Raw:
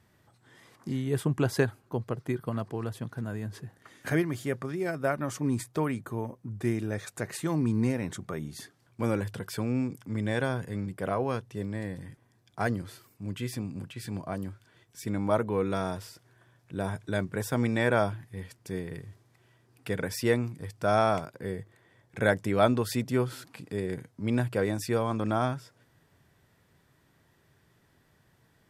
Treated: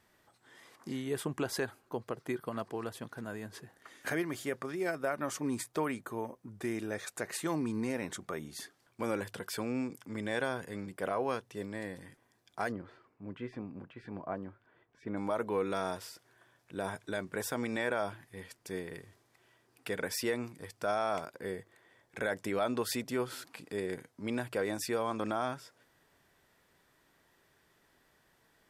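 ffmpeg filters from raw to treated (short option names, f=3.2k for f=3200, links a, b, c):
-filter_complex "[0:a]asplit=3[a][b][c];[a]afade=t=out:st=12.71:d=0.02[d];[b]lowpass=1.5k,afade=t=in:st=12.71:d=0.02,afade=t=out:st=15.16:d=0.02[e];[c]afade=t=in:st=15.16:d=0.02[f];[d][e][f]amix=inputs=3:normalize=0,alimiter=limit=-19dB:level=0:latency=1:release=85,equalizer=f=110:w=0.71:g=-14"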